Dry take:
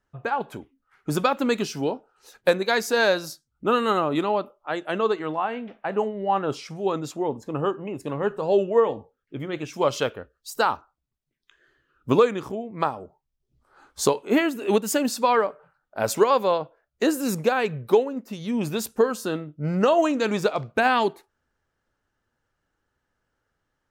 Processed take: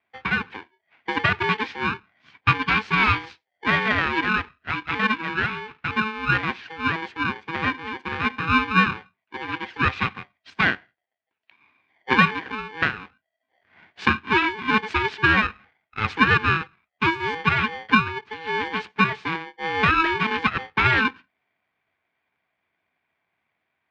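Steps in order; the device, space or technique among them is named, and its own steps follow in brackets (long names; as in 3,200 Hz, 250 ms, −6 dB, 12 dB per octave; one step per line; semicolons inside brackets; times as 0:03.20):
ring modulator pedal into a guitar cabinet (ring modulator with a square carrier 650 Hz; loudspeaker in its box 79–3,600 Hz, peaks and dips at 88 Hz +6 dB, 570 Hz −9 dB, 1,600 Hz +7 dB, 2,400 Hz +7 dB)
level −1 dB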